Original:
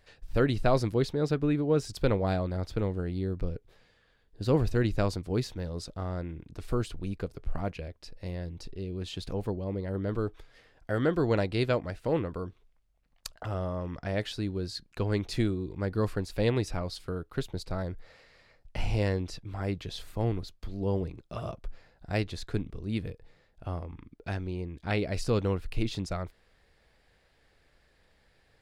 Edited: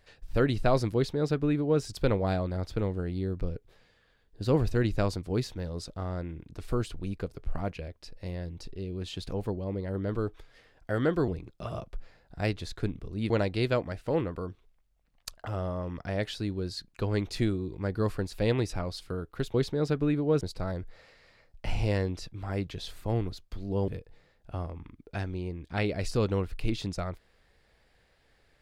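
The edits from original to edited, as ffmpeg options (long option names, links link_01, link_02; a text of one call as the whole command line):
ffmpeg -i in.wav -filter_complex "[0:a]asplit=6[link_01][link_02][link_03][link_04][link_05][link_06];[link_01]atrim=end=11.282[link_07];[link_02]atrim=start=20.988:end=23.012[link_08];[link_03]atrim=start=11.278:end=17.522[link_09];[link_04]atrim=start=0.948:end=1.822[link_10];[link_05]atrim=start=17.518:end=20.992[link_11];[link_06]atrim=start=23.008[link_12];[link_07][link_08]acrossfade=duration=0.004:curve1=hsin:curve2=hsin[link_13];[link_13][link_09]acrossfade=duration=0.004:curve1=hsin:curve2=hsin[link_14];[link_14][link_10]acrossfade=duration=0.004:curve1=hsin:curve2=hsin[link_15];[link_15][link_11]acrossfade=duration=0.004:curve1=hsin:curve2=hsin[link_16];[link_16][link_12]acrossfade=duration=0.004:curve1=hsin:curve2=hsin" out.wav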